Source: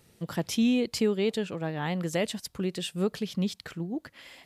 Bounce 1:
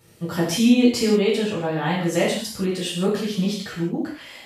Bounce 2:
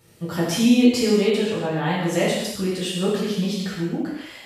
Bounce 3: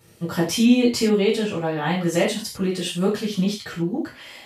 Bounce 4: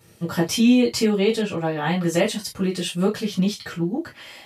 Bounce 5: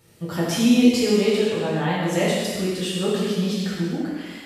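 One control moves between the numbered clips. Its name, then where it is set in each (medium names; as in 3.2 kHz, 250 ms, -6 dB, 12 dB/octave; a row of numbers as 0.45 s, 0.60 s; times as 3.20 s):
gated-style reverb, gate: 210 ms, 340 ms, 130 ms, 80 ms, 520 ms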